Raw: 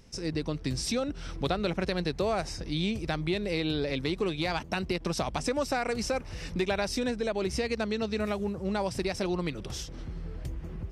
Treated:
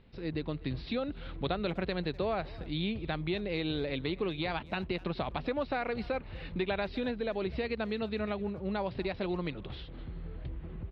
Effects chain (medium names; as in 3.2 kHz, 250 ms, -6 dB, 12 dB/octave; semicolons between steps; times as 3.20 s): steep low-pass 4.2 kHz 72 dB/octave; speakerphone echo 250 ms, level -20 dB; trim -3.5 dB